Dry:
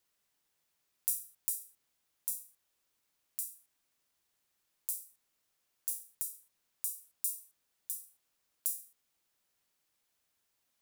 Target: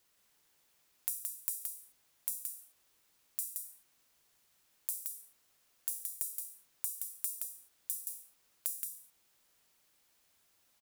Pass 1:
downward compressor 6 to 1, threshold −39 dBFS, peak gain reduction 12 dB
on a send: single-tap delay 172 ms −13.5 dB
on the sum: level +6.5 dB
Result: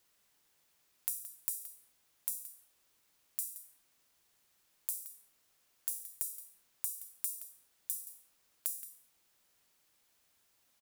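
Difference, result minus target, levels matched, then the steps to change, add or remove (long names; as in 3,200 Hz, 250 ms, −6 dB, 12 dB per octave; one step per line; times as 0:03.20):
echo-to-direct −9.5 dB
change: single-tap delay 172 ms −4 dB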